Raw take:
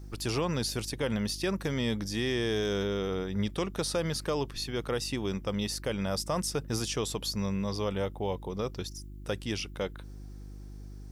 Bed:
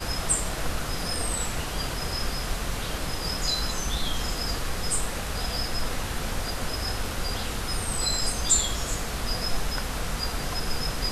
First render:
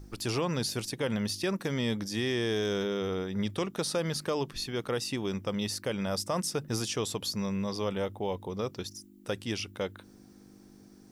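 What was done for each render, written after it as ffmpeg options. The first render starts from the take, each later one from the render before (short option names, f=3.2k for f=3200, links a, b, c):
-af "bandreject=f=50:t=h:w=4,bandreject=f=100:t=h:w=4,bandreject=f=150:t=h:w=4"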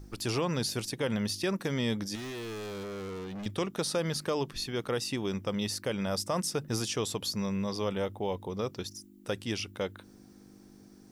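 -filter_complex "[0:a]asettb=1/sr,asplit=3[a][b][c];[a]atrim=end=2.154[d];[b]atrim=start=2.15:end=3.46,asetpts=PTS-STARTPTS,afade=t=in:d=0.004:c=qsin,afade=t=out:st=1.306:d=0.004:c=qsin,asoftclip=type=hard:threshold=-37.5dB[e];[c]atrim=start=3.456[f];[d][e]acrossfade=d=0.004:c1=hsin:c2=qsin[g];[g][f]acrossfade=d=0.004:c1=qsin:c2=hsin"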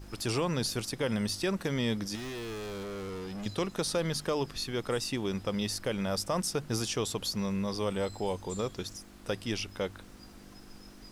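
-filter_complex "[1:a]volume=-24.5dB[a];[0:a][a]amix=inputs=2:normalize=0"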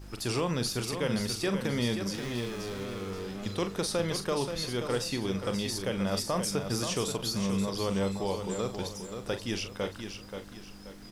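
-filter_complex "[0:a]asplit=2[a][b];[b]adelay=41,volume=-9.5dB[c];[a][c]amix=inputs=2:normalize=0,aecho=1:1:530|1060|1590|2120:0.422|0.148|0.0517|0.0181"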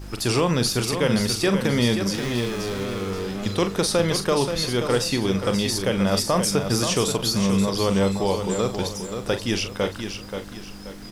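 -af "volume=9dB"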